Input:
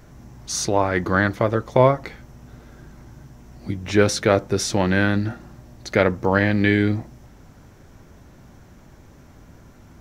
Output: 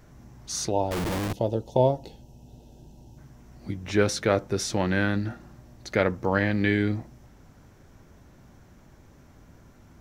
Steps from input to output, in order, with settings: 0.71–3.18 s: time-frequency box 980–2500 Hz -21 dB; 0.91–1.33 s: Schmitt trigger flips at -36.5 dBFS; trim -5.5 dB

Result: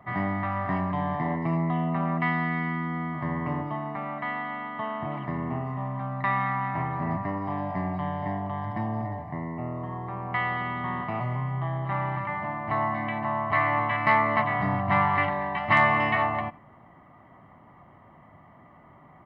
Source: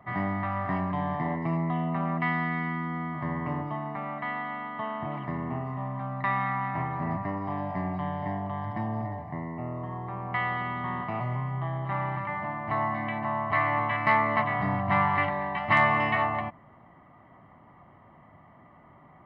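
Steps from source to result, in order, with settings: delay 85 ms -21.5 dB; trim +1.5 dB

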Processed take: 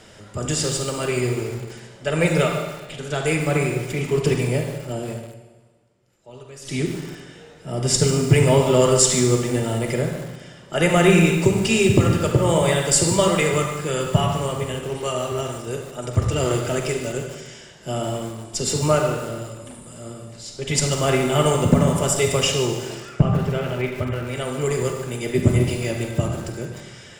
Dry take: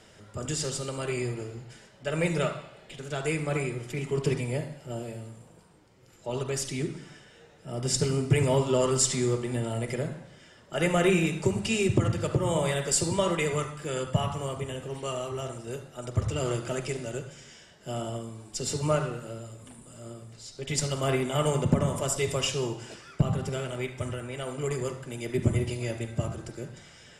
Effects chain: 5.14–6.75 s: dip -17.5 dB, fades 0.13 s; 23.09–24.27 s: Savitzky-Golay filter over 25 samples; Schroeder reverb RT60 1.3 s, combs from 32 ms, DRR 6 dB; bit-crushed delay 147 ms, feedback 35%, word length 6-bit, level -13.5 dB; trim +7.5 dB

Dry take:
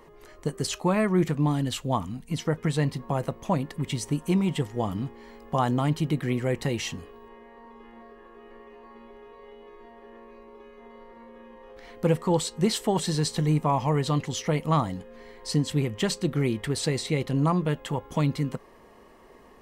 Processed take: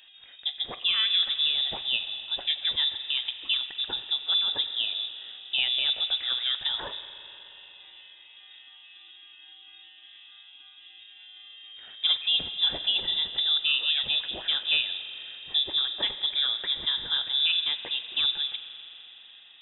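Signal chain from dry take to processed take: spring tank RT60 3.8 s, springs 42 ms, chirp 75 ms, DRR 9.5 dB; frequency inversion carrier 3.7 kHz; trim -2.5 dB

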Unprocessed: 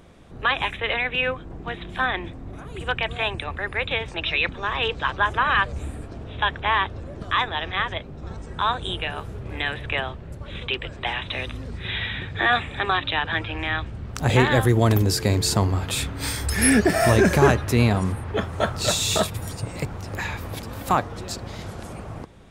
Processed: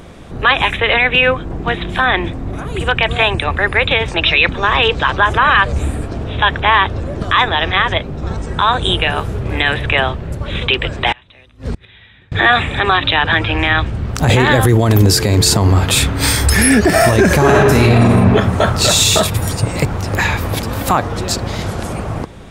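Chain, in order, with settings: 11.12–12.32 s: inverted gate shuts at -24 dBFS, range -29 dB; 17.38–18.09 s: reverb throw, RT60 1.4 s, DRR -3.5 dB; loudness maximiser +14.5 dB; trim -1 dB

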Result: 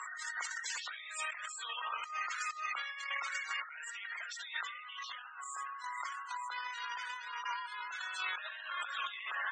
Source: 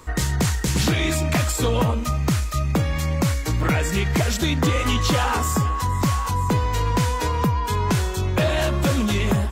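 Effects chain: octave divider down 1 oct, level -2 dB; flutter echo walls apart 12 m, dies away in 0.25 s; loudest bins only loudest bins 64; peak limiter -21 dBFS, peak gain reduction 11.5 dB; elliptic band-pass 1.4–8.2 kHz, stop band 70 dB; treble shelf 3.9 kHz -11.5 dB; band-stop 2.4 kHz, Q 16; compressor with a negative ratio -53 dBFS, ratio -1; trim +10.5 dB

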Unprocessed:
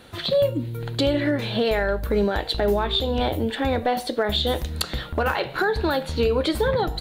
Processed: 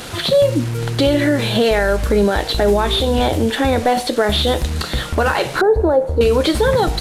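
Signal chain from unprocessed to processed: one-bit delta coder 64 kbps, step -34 dBFS; 5.61–6.21 s: FFT filter 110 Hz 0 dB, 170 Hz -12 dB, 500 Hz +7 dB, 3.2 kHz -27 dB, 10 kHz -20 dB; in parallel at +2.5 dB: peak limiter -17.5 dBFS, peak gain reduction 7.5 dB; on the sum: trim +1.5 dB

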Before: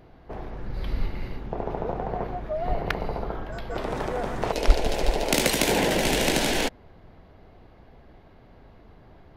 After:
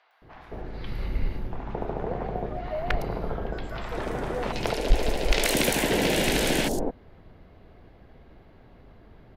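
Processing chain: three bands offset in time mids, highs, lows 110/220 ms, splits 850/5700 Hz; hard clipper -10 dBFS, distortion -17 dB

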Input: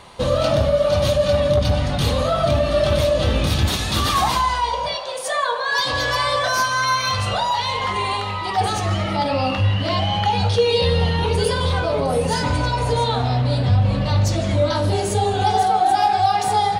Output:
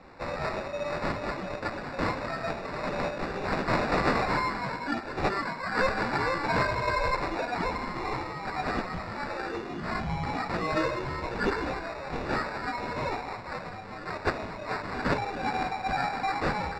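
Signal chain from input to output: high-pass 230 Hz 6 dB/octave; differentiator; chorus voices 2, 0.14 Hz, delay 13 ms, depth 3.8 ms; sample-and-hold 14×; distance through air 170 m; trim +7.5 dB

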